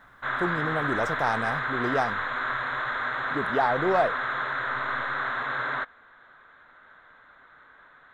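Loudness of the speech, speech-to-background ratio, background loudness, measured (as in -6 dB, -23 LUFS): -29.0 LUFS, -0.5 dB, -28.5 LUFS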